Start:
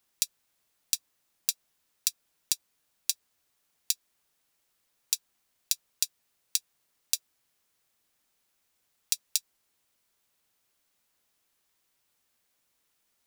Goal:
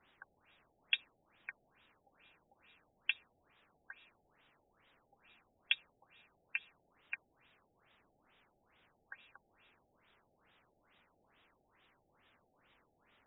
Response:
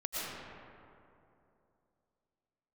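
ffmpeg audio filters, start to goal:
-filter_complex "[0:a]asplit=2[link_01][link_02];[link_02]acrossover=split=530 3600:gain=0.126 1 0.1[link_03][link_04][link_05];[link_03][link_04][link_05]amix=inputs=3:normalize=0[link_06];[1:a]atrim=start_sample=2205,asetrate=79380,aresample=44100[link_07];[link_06][link_07]afir=irnorm=-1:irlink=0,volume=-24.5dB[link_08];[link_01][link_08]amix=inputs=2:normalize=0,afftfilt=real='re*lt(b*sr/1024,820*pow(3900/820,0.5+0.5*sin(2*PI*2.3*pts/sr)))':imag='im*lt(b*sr/1024,820*pow(3900/820,0.5+0.5*sin(2*PI*2.3*pts/sr)))':win_size=1024:overlap=0.75,volume=12.5dB"

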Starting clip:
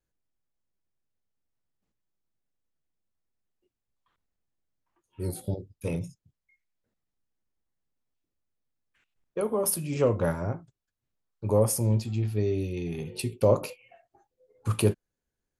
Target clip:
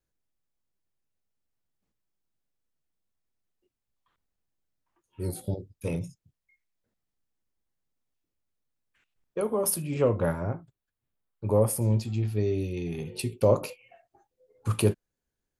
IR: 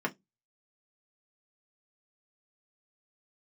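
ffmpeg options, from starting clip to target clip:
-filter_complex "[0:a]asettb=1/sr,asplit=3[link_01][link_02][link_03];[link_01]atrim=end=9.824[link_04];[link_02]atrim=start=9.82:end=11.82,asetpts=PTS-STARTPTS,afade=type=in:duration=0.004:curve=qsin,afade=type=out:start_time=1.996:duration=0.004:curve=qsin,equalizer=frequency=6000:width=1.7:gain=-11[link_05];[link_03]atrim=start=11.816[link_06];[link_04][link_05]acrossfade=duration=0.004:curve1=hsin:curve2=qsin[link_07];[link_07][link_06]acrossfade=duration=0.004:curve1=qsin:curve2=hsin"

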